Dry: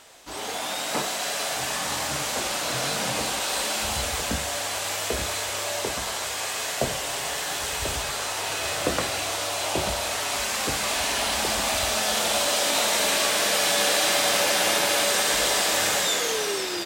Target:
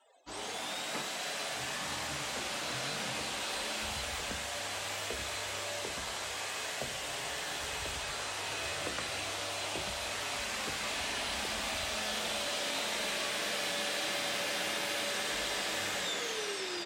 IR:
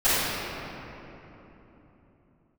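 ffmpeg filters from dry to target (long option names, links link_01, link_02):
-filter_complex "[0:a]acrossover=split=440|1300|4100[link_01][link_02][link_03][link_04];[link_01]acompressor=threshold=-37dB:ratio=4[link_05];[link_02]acompressor=threshold=-38dB:ratio=4[link_06];[link_03]acompressor=threshold=-29dB:ratio=4[link_07];[link_04]acompressor=threshold=-37dB:ratio=4[link_08];[link_05][link_06][link_07][link_08]amix=inputs=4:normalize=0,afftdn=noise_reduction=29:noise_floor=-48,bandreject=frequency=56.06:width_type=h:width=4,bandreject=frequency=112.12:width_type=h:width=4,bandreject=frequency=168.18:width_type=h:width=4,bandreject=frequency=224.24:width_type=h:width=4,bandreject=frequency=280.3:width_type=h:width=4,bandreject=frequency=336.36:width_type=h:width=4,bandreject=frequency=392.42:width_type=h:width=4,bandreject=frequency=448.48:width_type=h:width=4,bandreject=frequency=504.54:width_type=h:width=4,bandreject=frequency=560.6:width_type=h:width=4,bandreject=frequency=616.66:width_type=h:width=4,bandreject=frequency=672.72:width_type=h:width=4,bandreject=frequency=728.78:width_type=h:width=4,bandreject=frequency=784.84:width_type=h:width=4,bandreject=frequency=840.9:width_type=h:width=4,bandreject=frequency=896.96:width_type=h:width=4,bandreject=frequency=953.02:width_type=h:width=4,bandreject=frequency=1009.08:width_type=h:width=4,bandreject=frequency=1065.14:width_type=h:width=4,bandreject=frequency=1121.2:width_type=h:width=4,bandreject=frequency=1177.26:width_type=h:width=4,bandreject=frequency=1233.32:width_type=h:width=4,bandreject=frequency=1289.38:width_type=h:width=4,bandreject=frequency=1345.44:width_type=h:width=4,bandreject=frequency=1401.5:width_type=h:width=4,bandreject=frequency=1457.56:width_type=h:width=4,bandreject=frequency=1513.62:width_type=h:width=4,bandreject=frequency=1569.68:width_type=h:width=4,bandreject=frequency=1625.74:width_type=h:width=4,bandreject=frequency=1681.8:width_type=h:width=4,volume=-6dB"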